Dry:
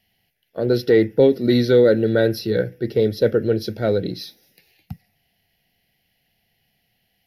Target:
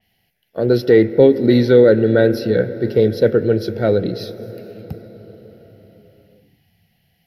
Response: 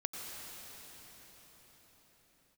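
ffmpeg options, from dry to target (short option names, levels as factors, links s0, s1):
-filter_complex "[0:a]asplit=2[s0][s1];[1:a]atrim=start_sample=2205,lowpass=2700[s2];[s1][s2]afir=irnorm=-1:irlink=0,volume=0.282[s3];[s0][s3]amix=inputs=2:normalize=0,adynamicequalizer=threshold=0.01:dfrequency=4000:dqfactor=0.7:tfrequency=4000:tqfactor=0.7:attack=5:release=100:ratio=0.375:range=3:mode=cutabove:tftype=highshelf,volume=1.26"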